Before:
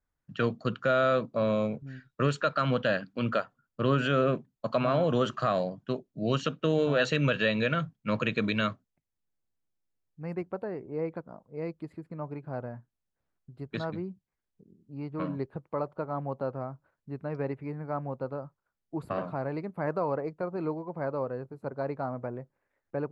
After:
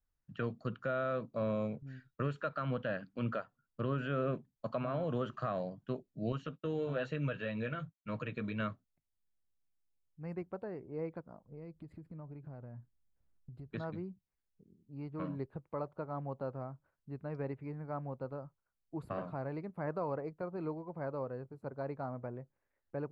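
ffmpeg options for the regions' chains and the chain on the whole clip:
ffmpeg -i in.wav -filter_complex "[0:a]asettb=1/sr,asplit=3[link_01][link_02][link_03];[link_01]atrim=end=6.324[link_04];[link_02]atrim=start=6.32:end=8.6,asetpts=PTS-STARTPTS,afade=type=in:duration=0.004:curve=qsin,afade=type=out:start_time=2.276:duration=0.004:curve=qsin,agate=range=-33dB:threshold=-39dB:ratio=3:release=100:detection=peak,flanger=delay=6.4:depth=2.5:regen=-39:speed=1.1:shape=sinusoidal[link_05];[link_03]atrim=start=8.596[link_06];[link_04][link_05]acrossfade=duration=0.004:curve1=hsin:curve2=qsin[link_07];[link_07][link_06]acrossfade=duration=0.004:curve1=qsin:curve2=hsin,asettb=1/sr,asplit=3[link_08][link_09][link_10];[link_08]atrim=end=11.444[link_11];[link_09]atrim=start=11.44:end=13.71,asetpts=PTS-STARTPTS,afade=type=in:duration=0.004:curve=qsin,afade=type=out:start_time=2.266:duration=0.004:curve=qsin,lowshelf=frequency=290:gain=9,acompressor=threshold=-40dB:ratio=4:attack=3.2:release=140:knee=1:detection=peak[link_12];[link_10]atrim=start=13.706[link_13];[link_11][link_12]acrossfade=duration=0.004:curve1=hsin:curve2=qsin[link_14];[link_14][link_13]acrossfade=duration=0.004:curve1=qsin:curve2=hsin,acrossover=split=2700[link_15][link_16];[link_16]acompressor=threshold=-55dB:ratio=4:attack=1:release=60[link_17];[link_15][link_17]amix=inputs=2:normalize=0,lowshelf=frequency=87:gain=9.5,alimiter=limit=-18dB:level=0:latency=1:release=378,volume=-7.5dB" out.wav

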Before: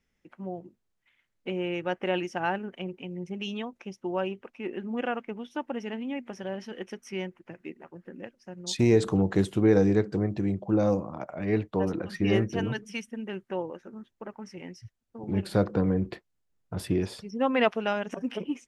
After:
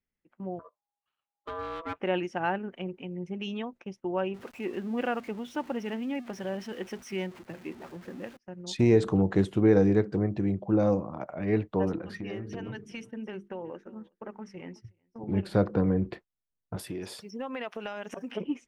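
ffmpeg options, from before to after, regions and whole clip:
ffmpeg -i in.wav -filter_complex "[0:a]asettb=1/sr,asplit=3[link_01][link_02][link_03];[link_01]atrim=end=0.594[link_04];[link_02]atrim=start=0.59:end=2,asetpts=PTS-STARTPTS,afade=type=in:duration=0.004:curve=qsin,afade=type=out:start_time=1.406:duration=0.004:curve=qsin,bandreject=frequency=2900:width=17,aeval=exprs='clip(val(0),-1,0.0211)':channel_layout=same,aeval=exprs='val(0)*sin(2*PI*820*n/s)':channel_layout=same[link_05];[link_03]atrim=start=1.996[link_06];[link_04][link_05]acrossfade=duration=0.004:curve1=hsin:curve2=qsin[link_07];[link_07][link_06]acrossfade=duration=0.004:curve1=qsin:curve2=hsin,asettb=1/sr,asplit=3[link_08][link_09][link_10];[link_08]atrim=end=4.344[link_11];[link_09]atrim=start=4.34:end=8.37,asetpts=PTS-STARTPTS,afade=type=in:duration=0.004:curve=qsin,afade=type=out:start_time=4.026:duration=0.004:curve=qsin,aeval=exprs='val(0)+0.5*0.00596*sgn(val(0))':channel_layout=same,highpass=45,highshelf=frequency=4300:gain=5[link_12];[link_10]atrim=start=8.366[link_13];[link_11][link_12]acrossfade=duration=0.004:curve1=hsin:curve2=qsin[link_14];[link_14][link_13]acrossfade=duration=0.004:curve1=qsin:curve2=hsin,asettb=1/sr,asplit=3[link_15][link_16][link_17];[link_15]atrim=end=11.964[link_18];[link_16]atrim=start=11.96:end=15.21,asetpts=PTS-STARTPTS,afade=type=in:duration=0.004:curve=qsin,afade=type=out:start_time=3.246:duration=0.004:curve=qsin,bandreject=frequency=50:width_type=h:width=6,bandreject=frequency=100:width_type=h:width=6,bandreject=frequency=150:width_type=h:width=6,bandreject=frequency=200:width_type=h:width=6,bandreject=frequency=250:width_type=h:width=6,bandreject=frequency=300:width_type=h:width=6,bandreject=frequency=350:width_type=h:width=6,bandreject=frequency=400:width_type=h:width=6,bandreject=frequency=450:width_type=h:width=6,acompressor=threshold=-33dB:ratio=6:attack=3.2:release=140:knee=1:detection=peak,aecho=1:1:371:0.1,atrim=end_sample=143325[link_19];[link_17]atrim=start=15.206[link_20];[link_18][link_19]acrossfade=duration=0.004:curve1=hsin:curve2=qsin[link_21];[link_21][link_20]acrossfade=duration=0.004:curve1=qsin:curve2=hsin,asettb=1/sr,asplit=3[link_22][link_23][link_24];[link_22]atrim=end=16.764[link_25];[link_23]atrim=start=16.76:end=18.31,asetpts=PTS-STARTPTS,afade=type=in:duration=0.004:curve=qsin,afade=type=out:start_time=1.546:duration=0.004:curve=qsin,aemphasis=mode=production:type=bsi,acompressor=threshold=-32dB:ratio=5:attack=3.2:release=140:knee=1:detection=peak[link_26];[link_24]atrim=start=18.306[link_27];[link_25][link_26]acrossfade=duration=0.004:curve1=hsin:curve2=qsin[link_28];[link_28][link_27]acrossfade=duration=0.004:curve1=qsin:curve2=hsin,agate=range=-13dB:threshold=-47dB:ratio=16:detection=peak,highshelf=frequency=4500:gain=-10" out.wav

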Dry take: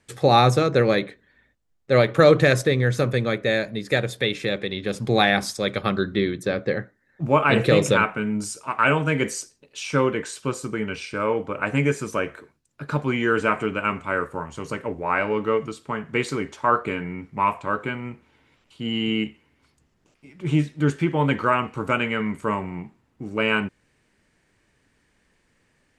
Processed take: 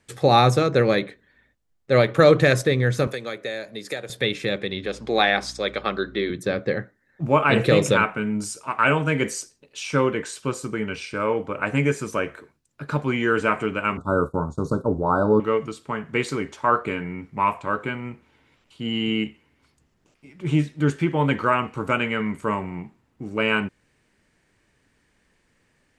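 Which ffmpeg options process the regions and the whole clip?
ffmpeg -i in.wav -filter_complex "[0:a]asettb=1/sr,asplit=3[link_01][link_02][link_03];[link_01]atrim=end=3.074[link_04];[link_02]atrim=start=3.07:end=4.1,asetpts=PTS-STARTPTS,afade=type=in:duration=0.004:curve=qsin,afade=type=out:start_time=1.026:duration=0.004:curve=qsin,bass=frequency=250:gain=-12,treble=frequency=4000:gain=6,acrossover=split=110|1200[link_05][link_06][link_07];[link_05]acompressor=threshold=-54dB:ratio=4[link_08];[link_06]acompressor=threshold=-30dB:ratio=4[link_09];[link_07]acompressor=threshold=-34dB:ratio=4[link_10];[link_08][link_09][link_10]amix=inputs=3:normalize=0[link_11];[link_03]atrim=start=4.096[link_12];[link_04][link_11]acrossfade=duration=0.004:curve1=hsin:curve2=qsin[link_13];[link_13][link_12]acrossfade=duration=0.004:curve1=qsin:curve2=hsin,asettb=1/sr,asplit=3[link_14][link_15][link_16];[link_14]atrim=end=4.864[link_17];[link_15]atrim=start=4.86:end=6.3,asetpts=PTS-STARTPTS,afade=type=in:duration=0.004:curve=qsin,afade=type=out:start_time=1.436:duration=0.004:curve=qsin,highpass=310,lowpass=6500,aeval=exprs='val(0)+0.00562*(sin(2*PI*60*n/s)+sin(2*PI*2*60*n/s)/2+sin(2*PI*3*60*n/s)/3+sin(2*PI*4*60*n/s)/4+sin(2*PI*5*60*n/s)/5)':channel_layout=same[link_18];[link_16]atrim=start=6.296[link_19];[link_17][link_18]acrossfade=duration=0.004:curve1=hsin:curve2=qsin[link_20];[link_20][link_19]acrossfade=duration=0.004:curve1=qsin:curve2=hsin,asettb=1/sr,asplit=3[link_21][link_22][link_23];[link_21]atrim=end=13.974[link_24];[link_22]atrim=start=13.97:end=15.4,asetpts=PTS-STARTPTS,afade=type=in:duration=0.004:curve=qsin,afade=type=out:start_time=1.426:duration=0.004:curve=qsin,lowshelf=frequency=470:gain=11,agate=range=-33dB:threshold=-29dB:ratio=3:release=100:detection=peak,asuperstop=centerf=2300:order=20:qfactor=1.1[link_25];[link_23]atrim=start=15.396[link_26];[link_24][link_25]acrossfade=duration=0.004:curve1=hsin:curve2=qsin[link_27];[link_27][link_26]acrossfade=duration=0.004:curve1=qsin:curve2=hsin" out.wav

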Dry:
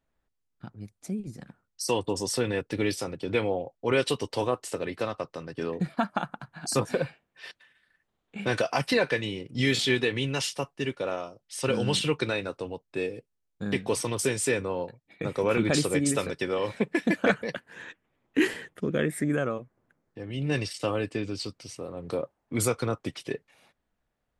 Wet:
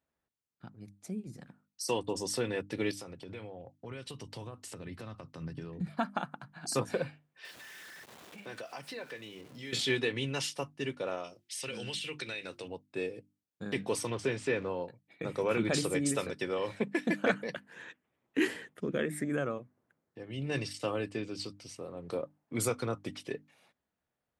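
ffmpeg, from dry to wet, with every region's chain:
ffmpeg -i in.wav -filter_complex "[0:a]asettb=1/sr,asplit=3[link_01][link_02][link_03];[link_01]atrim=end=2.914[link_04];[link_02]atrim=start=2.91:end=5.87,asetpts=PTS-STARTPTS,afade=type=in:duration=0.004:curve=qsin,afade=type=out:start_time=2.956:duration=0.004:curve=qsin,acompressor=threshold=-36dB:ratio=5:attack=3.2:release=140:knee=1:detection=peak,asubboost=boost=9.5:cutoff=190[link_05];[link_03]atrim=start=5.866[link_06];[link_04][link_05]acrossfade=duration=0.004:curve1=hsin:curve2=qsin[link_07];[link_07][link_06]acrossfade=duration=0.004:curve1=qsin:curve2=hsin,asettb=1/sr,asplit=3[link_08][link_09][link_10];[link_08]atrim=end=7.454[link_11];[link_09]atrim=start=7.45:end=9.73,asetpts=PTS-STARTPTS,afade=type=in:duration=0.004:curve=qsin,afade=type=out:start_time=2.276:duration=0.004:curve=qsin,aeval=exprs='val(0)+0.5*0.0112*sgn(val(0))':channel_layout=same,acompressor=threshold=-44dB:ratio=2:attack=3.2:release=140:knee=1:detection=peak,highpass=frequency=180:poles=1[link_12];[link_10]atrim=start=9.726[link_13];[link_11][link_12]acrossfade=duration=0.004:curve1=hsin:curve2=qsin[link_14];[link_14][link_13]acrossfade=duration=0.004:curve1=qsin:curve2=hsin,asettb=1/sr,asplit=3[link_15][link_16][link_17];[link_15]atrim=end=11.244[link_18];[link_16]atrim=start=11.24:end=12.68,asetpts=PTS-STARTPTS,afade=type=in:duration=0.004:curve=qsin,afade=type=out:start_time=1.436:duration=0.004:curve=qsin,highshelf=frequency=1600:width_type=q:width=1.5:gain=8,bandreject=frequency=50:width_type=h:width=6,bandreject=frequency=100:width_type=h:width=6,bandreject=frequency=150:width_type=h:width=6,bandreject=frequency=200:width_type=h:width=6,bandreject=frequency=250:width_type=h:width=6,bandreject=frequency=300:width_type=h:width=6,bandreject=frequency=350:width_type=h:width=6,acompressor=threshold=-32dB:ratio=4:attack=3.2:release=140:knee=1:detection=peak[link_19];[link_17]atrim=start=12.676[link_20];[link_18][link_19]acrossfade=duration=0.004:curve1=hsin:curve2=qsin[link_21];[link_21][link_20]acrossfade=duration=0.004:curve1=qsin:curve2=hsin,asettb=1/sr,asplit=3[link_22][link_23][link_24];[link_22]atrim=end=14.104[link_25];[link_23]atrim=start=14.1:end=14.69,asetpts=PTS-STARTPTS,afade=type=in:duration=0.004:curve=qsin,afade=type=out:start_time=0.586:duration=0.004:curve=qsin,aeval=exprs='val(0)+0.5*0.0106*sgn(val(0))':channel_layout=same,lowpass=3400[link_26];[link_24]atrim=start=14.686[link_27];[link_25][link_26]acrossfade=duration=0.004:curve1=hsin:curve2=qsin[link_28];[link_28][link_27]acrossfade=duration=0.004:curve1=qsin:curve2=hsin,highpass=83,bandreject=frequency=50:width_type=h:width=6,bandreject=frequency=100:width_type=h:width=6,bandreject=frequency=150:width_type=h:width=6,bandreject=frequency=200:width_type=h:width=6,bandreject=frequency=250:width_type=h:width=6,bandreject=frequency=300:width_type=h:width=6,volume=-5dB" out.wav

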